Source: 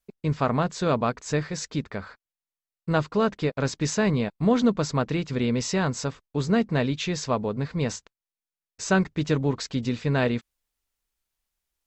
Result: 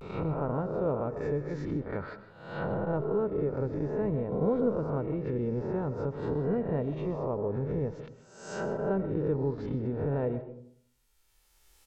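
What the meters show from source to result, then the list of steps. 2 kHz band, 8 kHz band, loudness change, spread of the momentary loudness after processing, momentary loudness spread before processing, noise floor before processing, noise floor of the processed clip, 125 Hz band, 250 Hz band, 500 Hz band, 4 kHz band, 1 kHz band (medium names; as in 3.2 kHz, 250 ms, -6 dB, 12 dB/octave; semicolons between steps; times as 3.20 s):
-13.5 dB, under -20 dB, -6.0 dB, 9 LU, 7 LU, under -85 dBFS, -67 dBFS, -5.5 dB, -7.0 dB, -2.5 dB, under -20 dB, -8.5 dB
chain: reverse spectral sustain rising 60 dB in 0.94 s; recorder AGC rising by 16 dB/s; low-pass that closes with the level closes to 670 Hz, closed at -20 dBFS; comb 2.2 ms, depth 37%; algorithmic reverb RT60 0.62 s, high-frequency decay 0.35×, pre-delay 90 ms, DRR 11.5 dB; vibrato 0.49 Hz 53 cents; trim -7 dB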